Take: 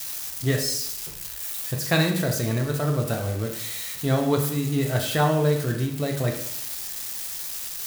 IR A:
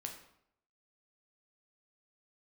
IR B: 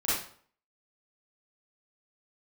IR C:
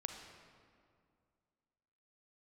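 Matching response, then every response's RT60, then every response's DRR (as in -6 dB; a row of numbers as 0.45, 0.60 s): A; 0.70, 0.50, 2.2 s; 2.0, -11.0, 4.0 dB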